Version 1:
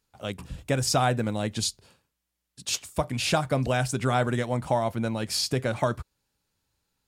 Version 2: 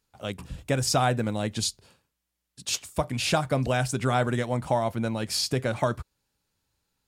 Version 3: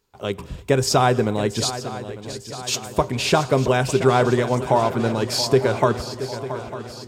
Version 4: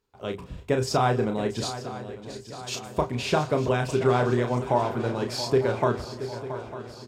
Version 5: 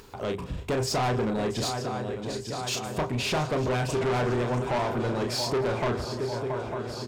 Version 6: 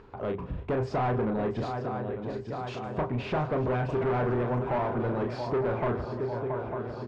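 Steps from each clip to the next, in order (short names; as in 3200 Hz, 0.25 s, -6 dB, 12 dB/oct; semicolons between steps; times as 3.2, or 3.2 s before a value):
nothing audible
thirty-one-band EQ 400 Hz +12 dB, 1000 Hz +6 dB, 10000 Hz -7 dB; swung echo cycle 0.9 s, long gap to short 3:1, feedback 55%, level -13 dB; on a send at -20.5 dB: reverb, pre-delay 3 ms; on the sum: gain +4.5 dB
high shelf 4500 Hz -7.5 dB; doubler 33 ms -6.5 dB; gain -6 dB
in parallel at -2 dB: upward compressor, threshold -24 dBFS; on the sum: soft clip -21.5 dBFS, distortion -7 dB; gain -1.5 dB
LPF 1700 Hz 12 dB/oct; gain -1 dB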